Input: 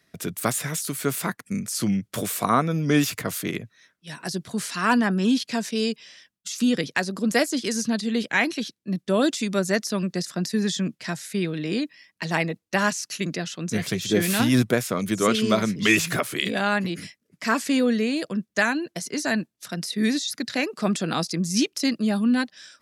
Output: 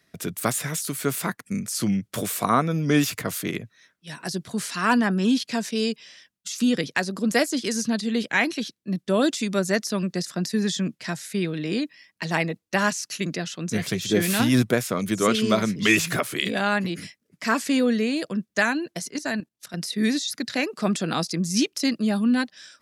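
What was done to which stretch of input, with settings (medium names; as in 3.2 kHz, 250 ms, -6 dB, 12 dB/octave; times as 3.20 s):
19.10–19.74 s: level held to a coarse grid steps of 13 dB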